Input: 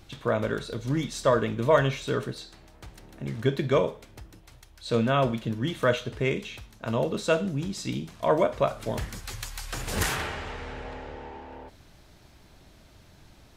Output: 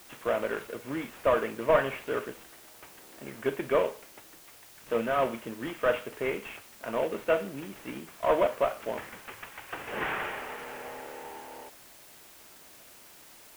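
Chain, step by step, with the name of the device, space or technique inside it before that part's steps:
army field radio (band-pass filter 360–3,400 Hz; variable-slope delta modulation 16 kbit/s; white noise bed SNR 21 dB)

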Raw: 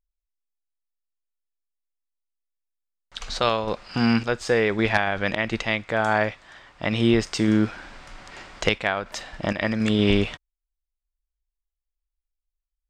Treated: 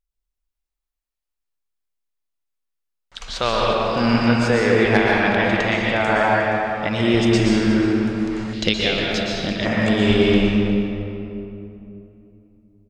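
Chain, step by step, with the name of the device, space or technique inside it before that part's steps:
cave (single-tap delay 358 ms −16 dB; convolution reverb RT60 3.0 s, pre-delay 112 ms, DRR −4 dB)
0:08.53–0:09.66: octave-band graphic EQ 250/1,000/2,000/4,000/8,000 Hz +4/−12/−3/+11/−5 dB

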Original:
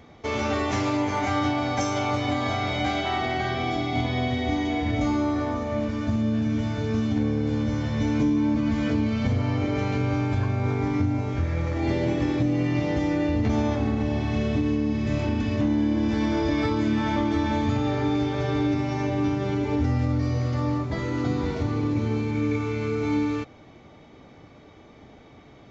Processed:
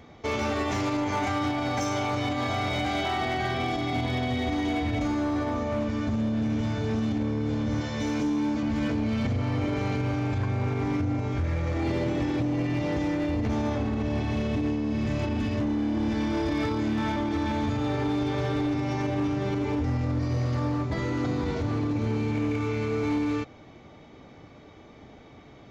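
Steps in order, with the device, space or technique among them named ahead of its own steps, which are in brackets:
0:07.81–0:08.63: bass and treble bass −8 dB, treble +5 dB
limiter into clipper (brickwall limiter −18 dBFS, peak gain reduction 5 dB; hard clipping −22.5 dBFS, distortion −16 dB)

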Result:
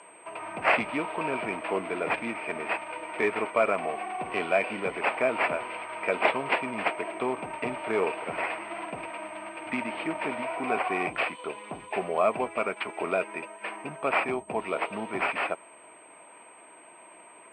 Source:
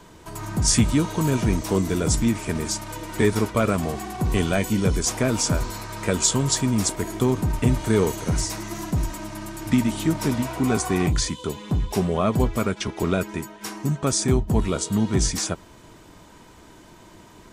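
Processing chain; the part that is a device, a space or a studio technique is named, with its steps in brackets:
toy sound module (linearly interpolated sample-rate reduction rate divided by 6×; switching amplifier with a slow clock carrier 8,300 Hz; loudspeaker in its box 560–4,300 Hz, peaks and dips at 670 Hz +5 dB, 1,600 Hz −4 dB, 2,400 Hz +9 dB, 3,800 Hz −9 dB)

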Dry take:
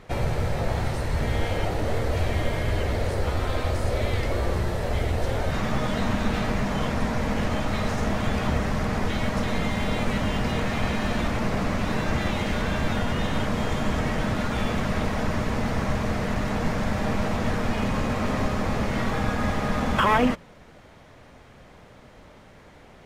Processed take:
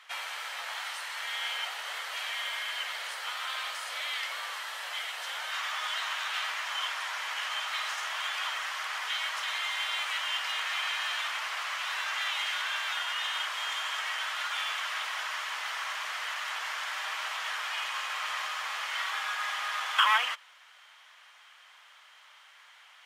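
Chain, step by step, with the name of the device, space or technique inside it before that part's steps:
headphones lying on a table (high-pass filter 1,100 Hz 24 dB per octave; parametric band 3,100 Hz +8 dB 0.28 octaves)

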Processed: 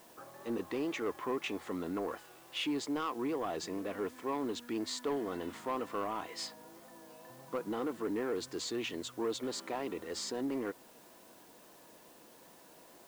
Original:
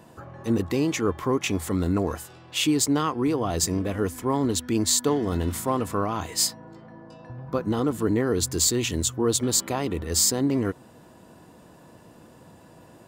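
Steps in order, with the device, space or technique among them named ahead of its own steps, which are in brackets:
tape answering machine (band-pass filter 320–3,200 Hz; soft clipping −21 dBFS, distortion −15 dB; tape wow and flutter; white noise bed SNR 23 dB)
level −6.5 dB

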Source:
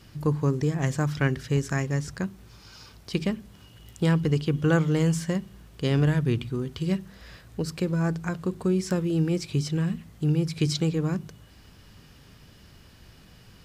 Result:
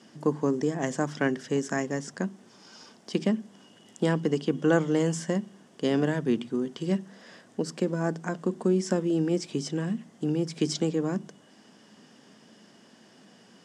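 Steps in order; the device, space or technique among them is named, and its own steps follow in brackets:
television speaker (loudspeaker in its box 210–8,600 Hz, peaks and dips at 220 Hz +6 dB, 670 Hz +3 dB, 1,300 Hz −5 dB, 2,400 Hz −8 dB, 4,100 Hz −9 dB)
level +1.5 dB

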